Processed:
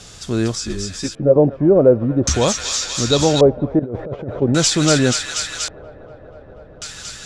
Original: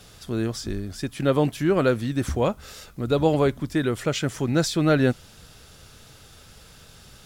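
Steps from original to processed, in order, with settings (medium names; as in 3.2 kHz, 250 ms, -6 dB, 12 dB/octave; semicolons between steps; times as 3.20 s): in parallel at +1.5 dB: peak limiter -16.5 dBFS, peak gain reduction 8.5 dB; 2.17–3.24 s: on the sum: high-order bell 4.9 kHz +10 dB 1.3 oct; on a send: feedback echo behind a high-pass 241 ms, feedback 84%, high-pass 1.7 kHz, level -3.5 dB; 3.79–4.42 s: on the sum: compressor with a negative ratio -23 dBFS, ratio -0.5; LFO low-pass square 0.44 Hz 570–7200 Hz; 0.55–1.36 s: three-phase chorus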